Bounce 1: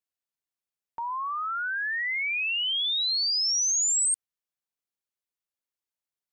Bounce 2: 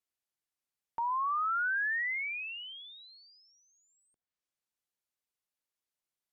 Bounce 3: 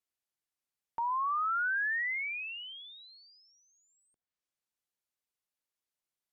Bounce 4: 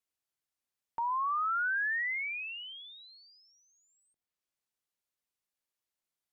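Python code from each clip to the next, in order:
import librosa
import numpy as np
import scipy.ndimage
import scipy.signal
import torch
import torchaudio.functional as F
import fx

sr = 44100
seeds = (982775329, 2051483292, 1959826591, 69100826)

y1 = fx.env_lowpass_down(x, sr, base_hz=500.0, full_db=-23.0)
y2 = y1
y3 = fx.end_taper(y2, sr, db_per_s=600.0)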